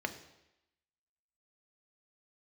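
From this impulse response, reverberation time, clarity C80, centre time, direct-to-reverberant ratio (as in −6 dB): 0.90 s, 14.5 dB, 9 ms, 6.5 dB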